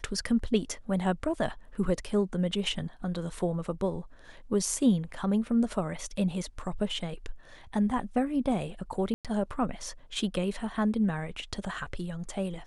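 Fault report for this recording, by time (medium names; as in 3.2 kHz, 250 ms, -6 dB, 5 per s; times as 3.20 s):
9.14–9.25 s: dropout 107 ms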